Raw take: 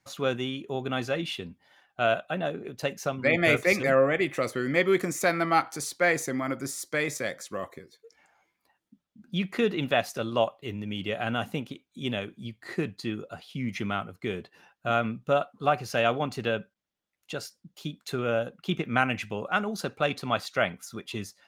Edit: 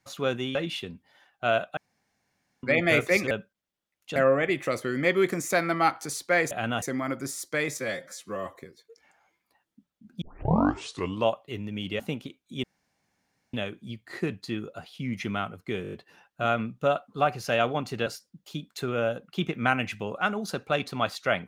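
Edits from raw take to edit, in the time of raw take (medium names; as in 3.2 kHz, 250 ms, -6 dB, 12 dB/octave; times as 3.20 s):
0.55–1.11 s: delete
2.33–3.19 s: room tone
7.19–7.70 s: stretch 1.5×
9.36 s: tape start 1.06 s
11.14–11.45 s: move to 6.22 s
12.09 s: insert room tone 0.90 s
14.38 s: stutter 0.02 s, 6 plays
16.52–17.37 s: move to 3.87 s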